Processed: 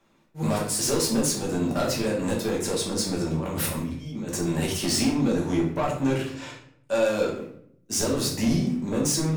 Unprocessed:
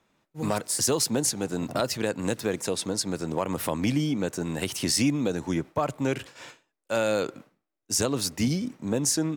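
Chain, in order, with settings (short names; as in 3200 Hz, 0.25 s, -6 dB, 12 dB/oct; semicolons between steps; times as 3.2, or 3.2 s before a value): 3.21–4.4 negative-ratio compressor -33 dBFS, ratio -0.5; 6.35–7.03 Bessel low-pass 11000 Hz; soft clip -24 dBFS, distortion -11 dB; shoebox room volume 110 m³, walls mixed, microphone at 1.2 m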